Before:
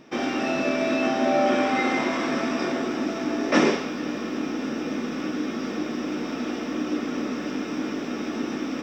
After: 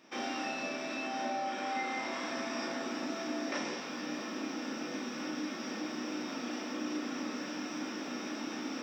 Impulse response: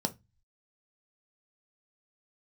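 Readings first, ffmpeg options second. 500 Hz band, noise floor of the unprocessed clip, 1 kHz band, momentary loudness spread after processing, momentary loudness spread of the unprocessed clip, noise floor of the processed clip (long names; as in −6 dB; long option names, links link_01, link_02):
−14.5 dB, −32 dBFS, −9.5 dB, 3 LU, 8 LU, −41 dBFS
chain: -filter_complex "[0:a]highpass=frequency=1100:poles=1,acompressor=threshold=-31dB:ratio=6,asplit=2[link_01][link_02];[1:a]atrim=start_sample=2205,adelay=33[link_03];[link_02][link_03]afir=irnorm=-1:irlink=0,volume=-6.5dB[link_04];[link_01][link_04]amix=inputs=2:normalize=0,volume=-5.5dB"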